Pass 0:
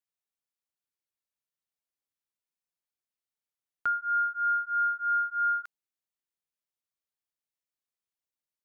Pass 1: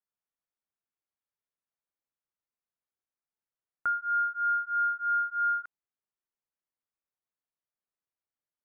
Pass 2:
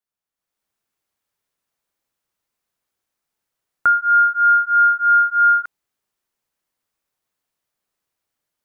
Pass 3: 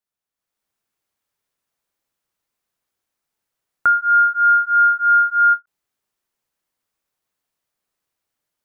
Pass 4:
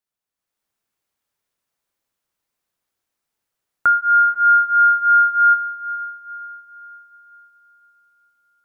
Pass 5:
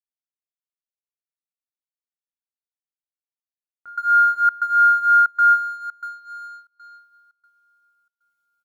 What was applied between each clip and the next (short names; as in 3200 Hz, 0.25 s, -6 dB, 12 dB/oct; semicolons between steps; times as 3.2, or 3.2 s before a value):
Chebyshev low-pass 1500 Hz, order 2
AGC gain up to 11 dB; gain +3 dB
ending taper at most 480 dB/s
diffused feedback echo 0.453 s, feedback 46%, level -14 dB
G.711 law mismatch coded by A; doubler 22 ms -5 dB; step gate "xx.xxxxx.xx" 117 bpm -24 dB; gain -4.5 dB